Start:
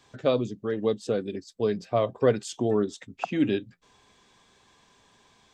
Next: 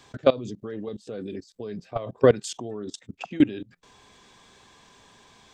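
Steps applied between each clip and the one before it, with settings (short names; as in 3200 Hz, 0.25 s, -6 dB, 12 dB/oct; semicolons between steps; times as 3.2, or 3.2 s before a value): level quantiser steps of 21 dB; gain +8 dB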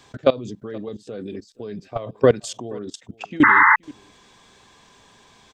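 echo 0.476 s -23 dB; painted sound noise, 3.43–3.76, 850–2100 Hz -15 dBFS; gain +2 dB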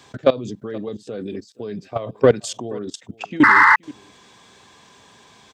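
HPF 79 Hz; in parallel at -5 dB: soft clip -13.5 dBFS, distortion -10 dB; on the sum: gain -1 dB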